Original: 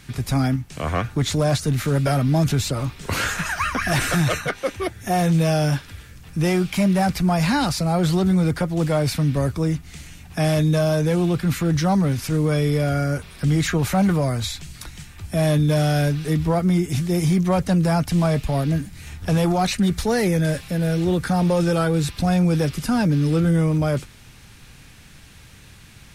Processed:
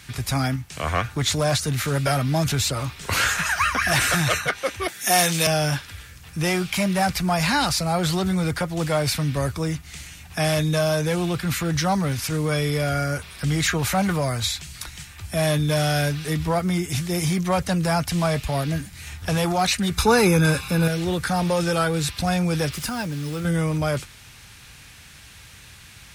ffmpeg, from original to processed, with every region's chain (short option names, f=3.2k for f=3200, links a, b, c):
-filter_complex "[0:a]asettb=1/sr,asplit=3[a][b][c];[a]atrim=end=4.884[d];[b]atrim=start=4.88:end=5.47,asetpts=PTS-STARTPTS,afade=t=in:d=0.004:c=qsin,afade=t=out:st=0.586:d=0.004:c=qsin,highpass=f=180:w=0.5412,highpass=f=180:w=1.3066,highshelf=f=2k:g=11[e];[c]atrim=start=5.466[f];[d][e]acrossfade=d=0.004:c1=hsin:c2=qsin[g];[g][f]acrossfade=d=0.004:c1=qsin:c2=hsin,asettb=1/sr,asplit=3[h][i][j];[h]atrim=end=19.974[k];[i]atrim=start=19.97:end=20.88,asetpts=PTS-STARTPTS,afade=t=in:d=0.004:c=qsin,afade=t=out:st=0.906:d=0.004:c=qsin,equalizer=f=620:t=o:w=2:g=10,aecho=1:1:0.8:0.8,atrim=end_sample=40131[l];[j]atrim=start=20.876[m];[k][l]acrossfade=d=0.004:c1=hsin:c2=qsin[n];[n][m]acrossfade=d=0.004:c1=qsin:c2=hsin,asettb=1/sr,asplit=3[o][p][q];[o]atrim=end=22.724[r];[p]atrim=start=22.72:end=23.45,asetpts=PTS-STARTPTS,afade=t=in:d=0.004:c=qsin,afade=t=out:st=0.726:d=0.004:c=qsin,acompressor=threshold=-22dB:ratio=4:attack=3.2:release=140:knee=1:detection=peak,acrusher=bits=6:mix=0:aa=0.5[s];[q]atrim=start=23.446[t];[r][s]acrossfade=d=0.004:c1=hsin:c2=qsin[u];[u][t]acrossfade=d=0.004:c1=qsin:c2=hsin,highpass=56,equalizer=f=240:w=0.44:g=-9.5,volume=4dB"